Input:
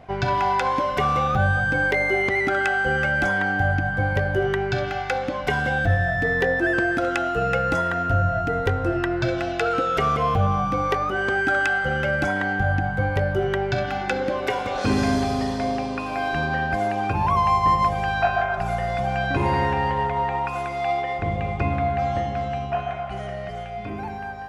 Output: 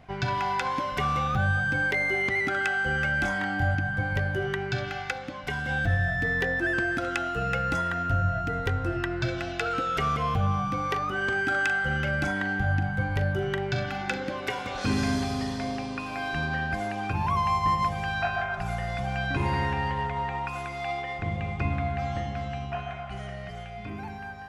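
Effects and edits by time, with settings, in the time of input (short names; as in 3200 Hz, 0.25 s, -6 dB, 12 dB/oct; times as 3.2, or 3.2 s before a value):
3.22–3.75 doubler 24 ms -4 dB
5.11–5.69 gain -3.5 dB
10.9–14.17 doubler 41 ms -11 dB
whole clip: bell 550 Hz -8 dB 1.8 oct; notches 50/100 Hz; gain -2 dB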